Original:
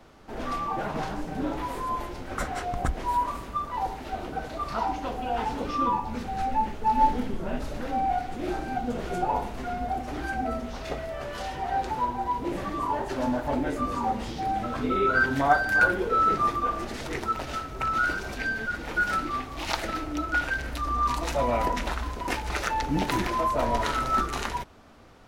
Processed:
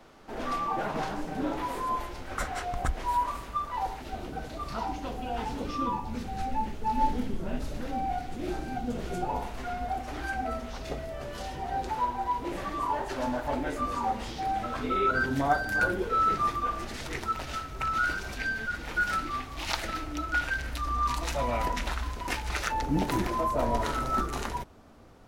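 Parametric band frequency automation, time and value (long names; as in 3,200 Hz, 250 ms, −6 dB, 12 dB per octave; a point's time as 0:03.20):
parametric band −6 dB 2.9 octaves
60 Hz
from 0:01.99 230 Hz
from 0:04.02 980 Hz
from 0:09.41 230 Hz
from 0:10.78 1,400 Hz
from 0:11.89 190 Hz
from 0:15.11 1,400 Hz
from 0:16.03 420 Hz
from 0:22.72 2,600 Hz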